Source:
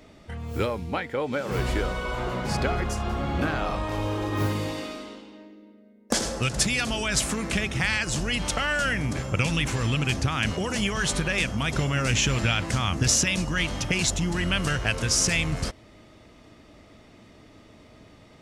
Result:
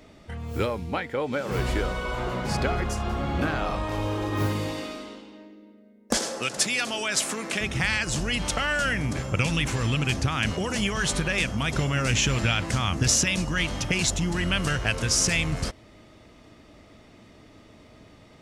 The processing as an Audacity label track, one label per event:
6.170000	7.610000	high-pass filter 290 Hz

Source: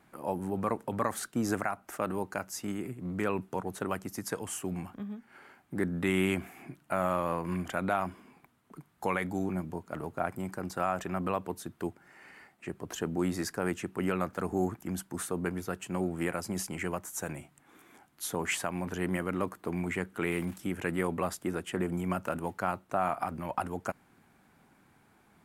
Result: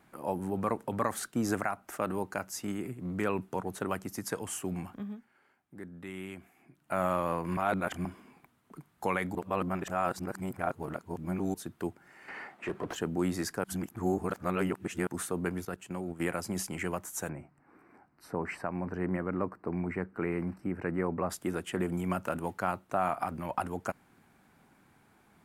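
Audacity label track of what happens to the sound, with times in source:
5.090000	6.980000	duck −14 dB, fades 0.25 s
7.570000	8.050000	reverse
9.350000	11.540000	reverse
12.280000	12.960000	mid-hump overdrive drive 24 dB, tone 1,000 Hz, clips at −23.5 dBFS
13.640000	15.070000	reverse
15.650000	16.200000	output level in coarse steps of 12 dB
17.290000	21.300000	moving average over 13 samples

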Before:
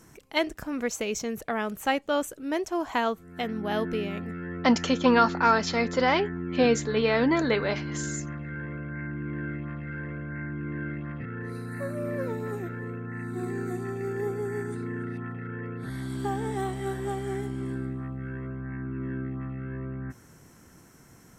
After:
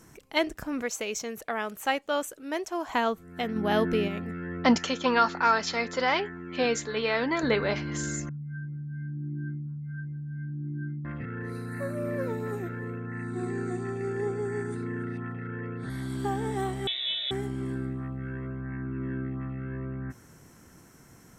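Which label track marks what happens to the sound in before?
0.820000	2.890000	low-shelf EQ 260 Hz −12 dB
3.560000	4.080000	clip gain +3.5 dB
4.780000	7.430000	low-shelf EQ 410 Hz −10.5 dB
8.290000	11.050000	expanding power law on the bin magnitudes exponent 3.2
12.990000	15.900000	linear-phase brick-wall low-pass 9,800 Hz
16.870000	17.310000	voice inversion scrambler carrier 3,800 Hz

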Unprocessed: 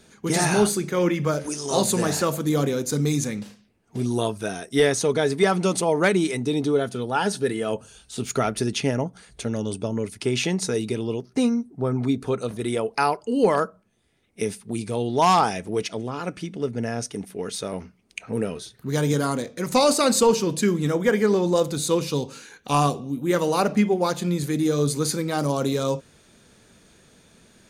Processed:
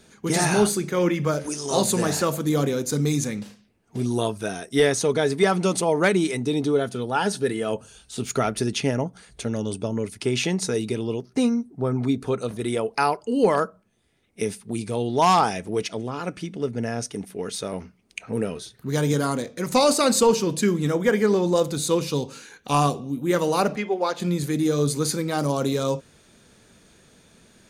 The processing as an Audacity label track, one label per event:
23.760000	24.200000	three-way crossover with the lows and the highs turned down lows −19 dB, under 320 Hz, highs −14 dB, over 5,500 Hz

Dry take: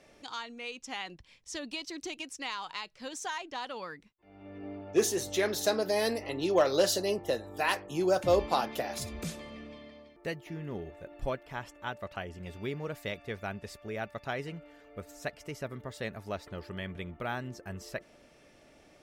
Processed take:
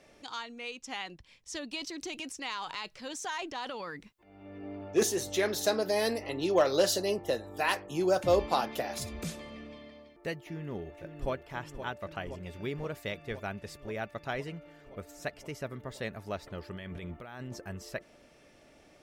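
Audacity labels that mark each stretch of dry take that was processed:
1.750000	5.030000	transient designer attack −1 dB, sustain +8 dB
10.450000	11.310000	delay throw 520 ms, feedback 80%, level −9.5 dB
16.750000	17.660000	compressor whose output falls as the input rises −42 dBFS

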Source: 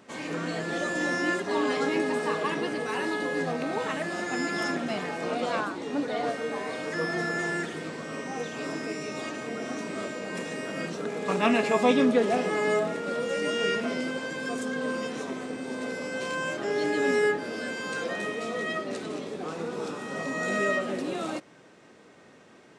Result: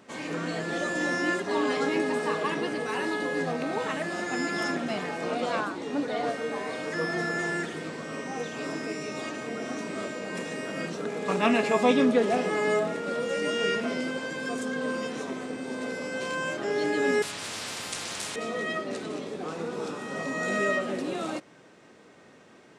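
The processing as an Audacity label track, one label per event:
17.220000	18.360000	every bin compressed towards the loudest bin 10 to 1

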